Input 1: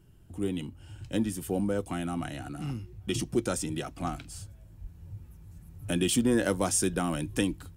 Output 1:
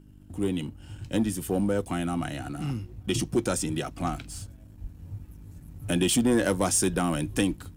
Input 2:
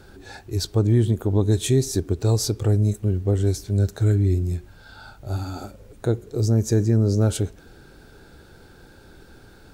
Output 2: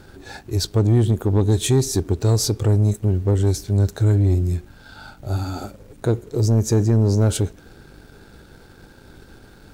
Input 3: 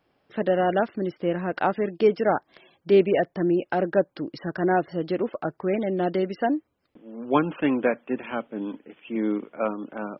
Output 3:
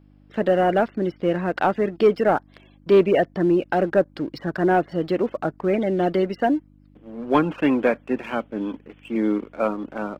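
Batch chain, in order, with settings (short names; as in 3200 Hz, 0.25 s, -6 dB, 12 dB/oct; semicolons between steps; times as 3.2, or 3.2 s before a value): sample leveller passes 1; buzz 50 Hz, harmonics 6, -53 dBFS -2 dB/oct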